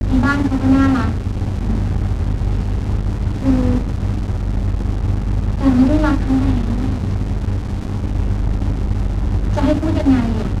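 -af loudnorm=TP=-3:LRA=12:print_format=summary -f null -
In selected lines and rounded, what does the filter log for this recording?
Input Integrated:    -18.5 LUFS
Input True Peak:      -2.2 dBTP
Input LRA:             2.2 LU
Input Threshold:     -28.5 LUFS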